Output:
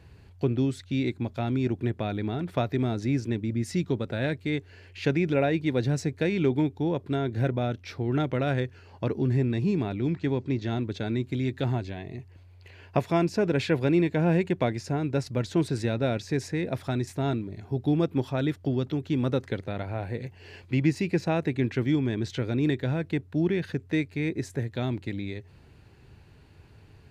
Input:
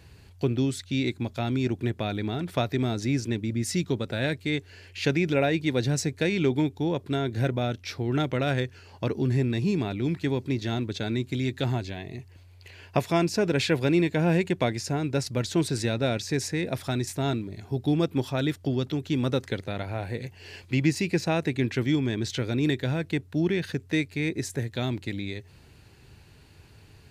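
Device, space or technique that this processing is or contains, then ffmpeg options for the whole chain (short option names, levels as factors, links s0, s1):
through cloth: -filter_complex "[0:a]highshelf=f=3200:g=-11,asettb=1/sr,asplit=3[s0][s1][s2];[s0]atrim=end=10.104[s3];[s1]atrim=start=10.1:end=10.71,asetpts=PTS-STARTPTS,afade=t=in:d=0.004:c=qsin,afade=t=out:st=0.606:d=0.004:c=qsin,lowpass=f=7700:w=0.5412,lowpass=f=7700:w=1.3066[s4];[s2]atrim=start=10.706[s5];[s3][s4]acrossfade=d=0.004:c1=hsin:c2=qsin[s6];[s6][s5]acrossfade=d=0.004:c1=qsin:c2=hsin"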